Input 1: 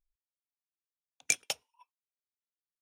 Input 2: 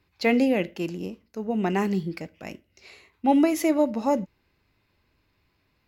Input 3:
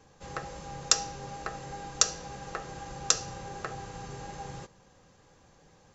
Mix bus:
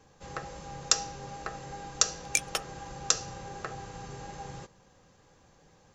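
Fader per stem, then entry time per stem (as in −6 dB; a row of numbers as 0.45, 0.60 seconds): +1.0 dB, muted, −1.0 dB; 1.05 s, muted, 0.00 s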